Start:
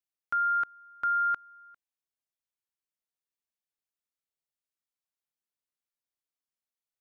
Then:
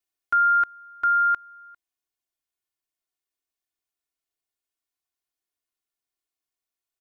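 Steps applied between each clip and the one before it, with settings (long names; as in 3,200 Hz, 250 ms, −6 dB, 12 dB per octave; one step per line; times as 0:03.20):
comb filter 2.8 ms, depth 81%
in parallel at +0.5 dB: speech leveller 2 s
on the sum: level −4 dB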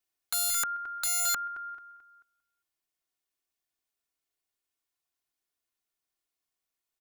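repeating echo 219 ms, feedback 37%, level −14 dB
wrap-around overflow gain 23 dB
level +1 dB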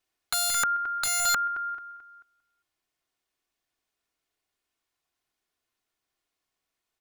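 low-pass filter 4,000 Hz 6 dB per octave
level +8 dB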